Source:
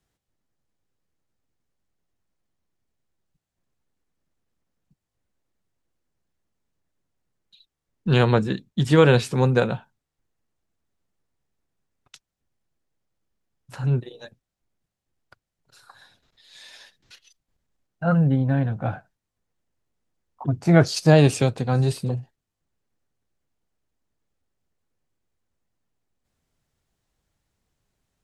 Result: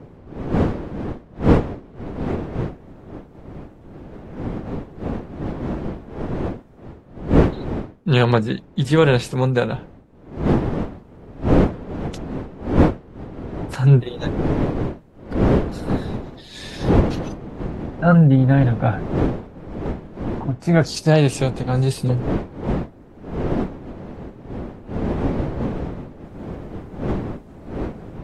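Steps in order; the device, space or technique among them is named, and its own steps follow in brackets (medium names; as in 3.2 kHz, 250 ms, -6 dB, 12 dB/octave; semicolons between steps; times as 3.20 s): smartphone video outdoors (wind noise 330 Hz; level rider gain up to 12 dB; trim -1 dB; AAC 48 kbps 48 kHz)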